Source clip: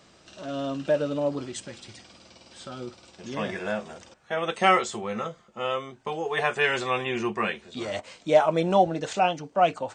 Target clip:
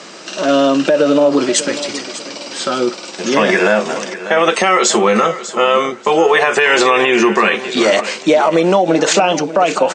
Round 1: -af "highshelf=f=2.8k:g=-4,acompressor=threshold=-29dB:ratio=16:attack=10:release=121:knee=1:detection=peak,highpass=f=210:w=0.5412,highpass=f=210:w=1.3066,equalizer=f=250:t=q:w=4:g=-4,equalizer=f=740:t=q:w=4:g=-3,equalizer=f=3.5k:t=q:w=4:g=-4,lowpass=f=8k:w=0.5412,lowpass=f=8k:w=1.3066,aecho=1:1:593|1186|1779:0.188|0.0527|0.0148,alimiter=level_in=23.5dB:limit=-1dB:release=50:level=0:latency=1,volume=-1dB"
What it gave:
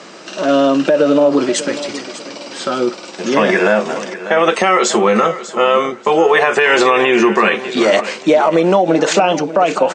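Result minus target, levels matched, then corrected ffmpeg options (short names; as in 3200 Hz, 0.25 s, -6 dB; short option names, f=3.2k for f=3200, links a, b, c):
4000 Hz band -3.0 dB
-af "highshelf=f=2.8k:g=2,acompressor=threshold=-29dB:ratio=16:attack=10:release=121:knee=1:detection=peak,highpass=f=210:w=0.5412,highpass=f=210:w=1.3066,equalizer=f=250:t=q:w=4:g=-4,equalizer=f=740:t=q:w=4:g=-3,equalizer=f=3.5k:t=q:w=4:g=-4,lowpass=f=8k:w=0.5412,lowpass=f=8k:w=1.3066,aecho=1:1:593|1186|1779:0.188|0.0527|0.0148,alimiter=level_in=23.5dB:limit=-1dB:release=50:level=0:latency=1,volume=-1dB"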